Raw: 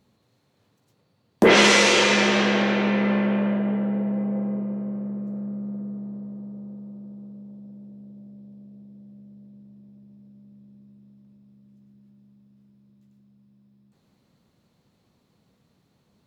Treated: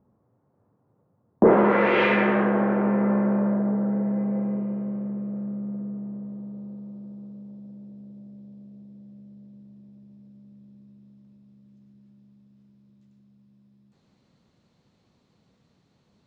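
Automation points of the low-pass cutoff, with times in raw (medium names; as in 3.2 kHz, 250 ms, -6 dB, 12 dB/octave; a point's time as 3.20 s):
low-pass 24 dB/octave
1.63 s 1.2 kHz
2.04 s 2.5 kHz
2.53 s 1.4 kHz
3.79 s 1.4 kHz
4.64 s 3.2 kHz
6.14 s 3.2 kHz
7.09 s 7.4 kHz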